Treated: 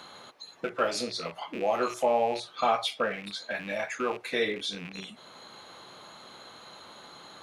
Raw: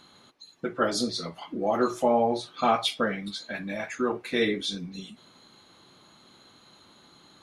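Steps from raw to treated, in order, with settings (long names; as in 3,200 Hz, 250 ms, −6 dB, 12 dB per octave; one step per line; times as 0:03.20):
loose part that buzzes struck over −41 dBFS, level −32 dBFS
low shelf with overshoot 400 Hz −6.5 dB, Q 1.5
multiband upward and downward compressor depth 40%
level −1 dB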